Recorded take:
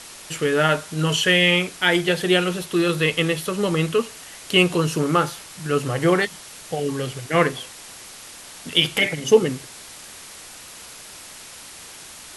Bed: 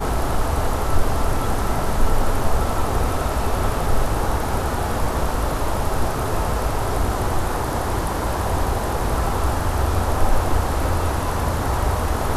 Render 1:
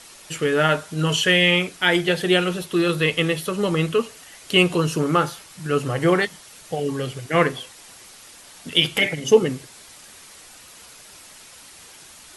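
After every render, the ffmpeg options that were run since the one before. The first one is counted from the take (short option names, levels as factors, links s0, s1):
-af "afftdn=nr=6:nf=-41"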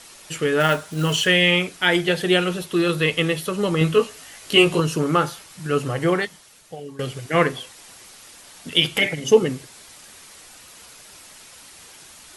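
-filter_complex "[0:a]asettb=1/sr,asplit=3[s0][s1][s2];[s0]atrim=end=0.604[s3];[s1]atrim=start=0.6:end=1.27,asetpts=PTS-STARTPTS,afade=t=in:d=0.004:c=qsin,afade=t=out:st=0.666:d=0.004:c=qsin,acrusher=bits=5:mode=log:mix=0:aa=0.000001[s4];[s2]atrim=start=1.266[s5];[s3][s4]acrossfade=d=0.004:c1=hsin:c2=qsin[s6];[s6][s5]acrossfade=d=0.004:c1=qsin:c2=hsin,asettb=1/sr,asplit=3[s7][s8][s9];[s7]atrim=end=3.794[s10];[s8]atrim=start=3.79:end=4.8,asetpts=PTS-STARTPTS,afade=t=in:d=0.004:c=qsin,afade=t=out:st=1.006:d=0.004:c=qsin,asplit=2[s11][s12];[s12]adelay=19,volume=0.75[s13];[s11][s13]amix=inputs=2:normalize=0,atrim=end_sample=44541[s14];[s9]atrim=start=4.796[s15];[s10][s14]acrossfade=d=0.004:c1=hsin:c2=qsin[s16];[s16][s15]acrossfade=d=0.004:c1=qsin:c2=hsin,asplit=2[s17][s18];[s17]atrim=end=6.99,asetpts=PTS-STARTPTS,afade=t=out:st=5.8:d=1.19:silence=0.177828[s19];[s18]atrim=start=6.99,asetpts=PTS-STARTPTS,afade=t=in:d=0.004:c=hsin:silence=0.177828[s20];[s19][s20]concat=n=2:v=0:a=1"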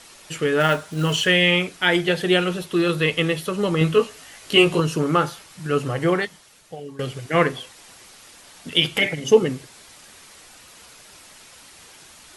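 -af "highshelf=f=6700:g=-4.5"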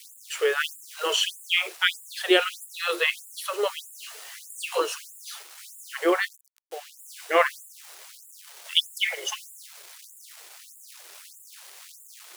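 -af "acrusher=bits=6:mix=0:aa=0.000001,afftfilt=real='re*gte(b*sr/1024,320*pow(7000/320,0.5+0.5*sin(2*PI*1.6*pts/sr)))':imag='im*gte(b*sr/1024,320*pow(7000/320,0.5+0.5*sin(2*PI*1.6*pts/sr)))':win_size=1024:overlap=0.75"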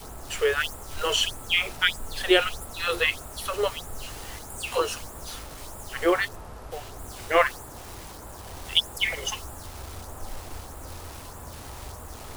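-filter_complex "[1:a]volume=0.1[s0];[0:a][s0]amix=inputs=2:normalize=0"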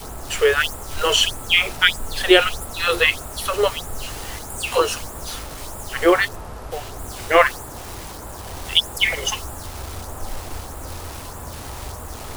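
-af "volume=2.24,alimiter=limit=0.891:level=0:latency=1"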